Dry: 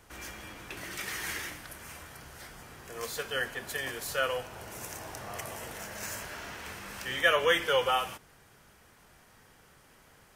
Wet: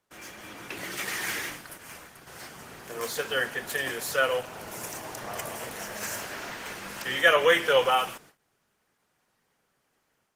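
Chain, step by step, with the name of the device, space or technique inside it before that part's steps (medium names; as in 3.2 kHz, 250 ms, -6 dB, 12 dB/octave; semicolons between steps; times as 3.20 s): 1.36–2.27 s: expander -42 dBFS; video call (high-pass 140 Hz 12 dB/octave; level rider gain up to 6 dB; gate -50 dBFS, range -18 dB; Opus 16 kbps 48 kHz)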